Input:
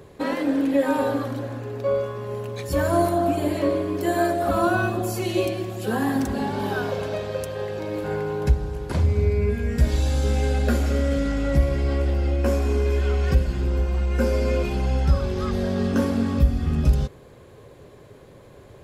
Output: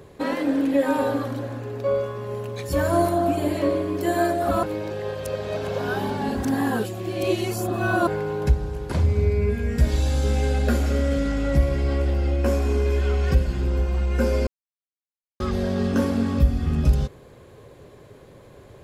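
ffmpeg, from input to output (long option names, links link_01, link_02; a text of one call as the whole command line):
ffmpeg -i in.wav -filter_complex "[0:a]asplit=5[link_01][link_02][link_03][link_04][link_05];[link_01]atrim=end=4.632[link_06];[link_02]atrim=start=4.628:end=8.072,asetpts=PTS-STARTPTS,areverse[link_07];[link_03]atrim=start=8.068:end=14.47,asetpts=PTS-STARTPTS,afade=type=out:start_time=6.398:duration=0.004:curve=hsin[link_08];[link_04]atrim=start=14.47:end=15.4,asetpts=PTS-STARTPTS,volume=0[link_09];[link_05]atrim=start=15.4,asetpts=PTS-STARTPTS,afade=type=in:duration=0.004:curve=hsin[link_10];[link_06][link_07]acrossfade=duration=0.004:curve1=hsin:curve2=hsin[link_11];[link_08][link_09][link_10]concat=n=3:v=0:a=1[link_12];[link_11][link_12]acrossfade=duration=0.004:curve1=hsin:curve2=hsin" out.wav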